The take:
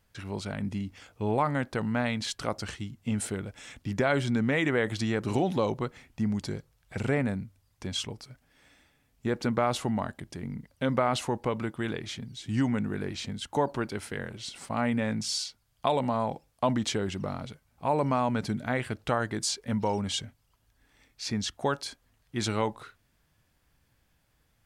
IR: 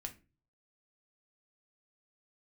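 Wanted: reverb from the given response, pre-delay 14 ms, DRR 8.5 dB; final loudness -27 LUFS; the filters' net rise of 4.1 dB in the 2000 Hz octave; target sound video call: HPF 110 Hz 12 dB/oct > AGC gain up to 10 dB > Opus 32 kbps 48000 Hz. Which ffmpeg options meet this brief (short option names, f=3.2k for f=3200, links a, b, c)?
-filter_complex "[0:a]equalizer=f=2k:t=o:g=5,asplit=2[a][b];[1:a]atrim=start_sample=2205,adelay=14[c];[b][c]afir=irnorm=-1:irlink=0,volume=-5.5dB[d];[a][d]amix=inputs=2:normalize=0,highpass=110,dynaudnorm=m=10dB,volume=-1.5dB" -ar 48000 -c:a libopus -b:a 32k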